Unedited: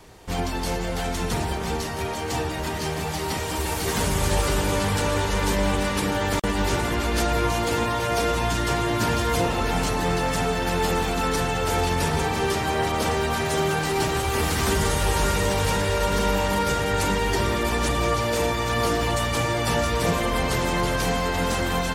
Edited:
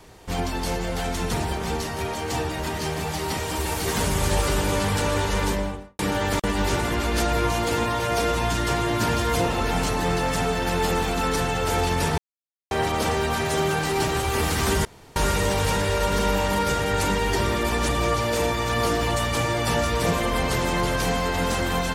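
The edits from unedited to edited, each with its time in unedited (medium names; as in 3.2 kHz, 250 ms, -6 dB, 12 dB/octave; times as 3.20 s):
5.38–5.99 s: studio fade out
12.18–12.71 s: mute
14.85–15.16 s: room tone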